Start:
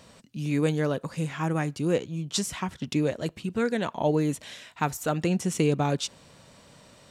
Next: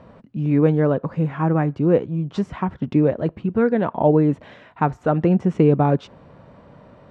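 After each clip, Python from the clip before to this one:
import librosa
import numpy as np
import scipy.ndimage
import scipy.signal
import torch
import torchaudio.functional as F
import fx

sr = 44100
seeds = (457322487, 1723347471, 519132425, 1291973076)

y = scipy.signal.sosfilt(scipy.signal.butter(2, 1200.0, 'lowpass', fs=sr, output='sos'), x)
y = F.gain(torch.from_numpy(y), 8.5).numpy()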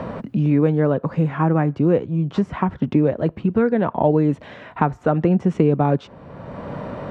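y = fx.band_squash(x, sr, depth_pct=70)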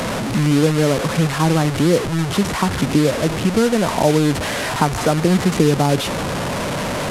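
y = fx.delta_mod(x, sr, bps=64000, step_db=-18.0)
y = F.gain(torch.from_numpy(y), 1.5).numpy()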